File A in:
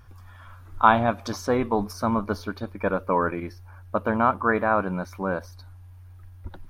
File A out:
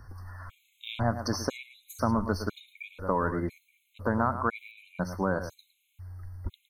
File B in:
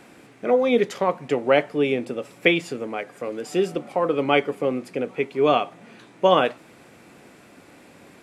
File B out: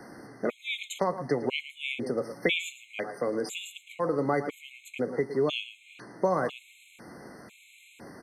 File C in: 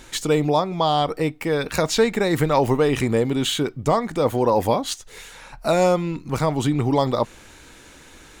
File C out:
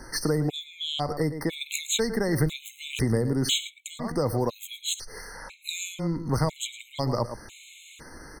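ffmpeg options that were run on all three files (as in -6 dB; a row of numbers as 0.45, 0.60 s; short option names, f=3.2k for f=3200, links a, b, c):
-filter_complex "[0:a]asplit=2[a][b];[b]adelay=110.8,volume=-13dB,highshelf=f=4k:g=-2.49[c];[a][c]amix=inputs=2:normalize=0,acrossover=split=140|3000[d][e][f];[e]acompressor=threshold=-27dB:ratio=5[g];[d][g][f]amix=inputs=3:normalize=0,afftfilt=real='re*gt(sin(2*PI*1*pts/sr)*(1-2*mod(floor(b*sr/1024/2100),2)),0)':imag='im*gt(sin(2*PI*1*pts/sr)*(1-2*mod(floor(b*sr/1024/2100),2)),0)':win_size=1024:overlap=0.75,volume=2.5dB"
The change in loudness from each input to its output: -6.5, -8.0, -7.0 LU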